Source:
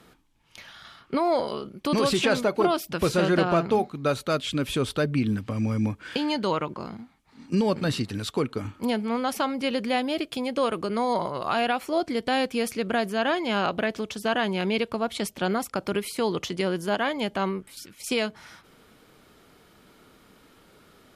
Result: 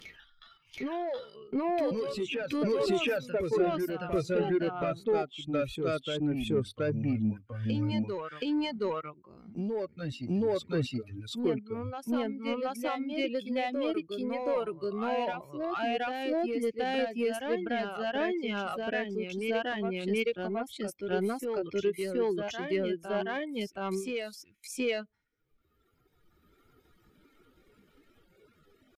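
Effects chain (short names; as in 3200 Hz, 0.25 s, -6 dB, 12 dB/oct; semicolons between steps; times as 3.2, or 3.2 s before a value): per-bin expansion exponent 1.5; reverb removal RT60 1.9 s; gate with hold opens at -50 dBFS; high shelf 2800 Hz -10 dB; upward compressor, threshold -36 dBFS; limiter -22 dBFS, peak gain reduction 7 dB; tempo 0.73×; soft clip -23.5 dBFS, distortion -20 dB; fifteen-band EQ 400 Hz +5 dB, 1000 Hz -5 dB, 2500 Hz +5 dB; reverse echo 0.723 s -4.5 dB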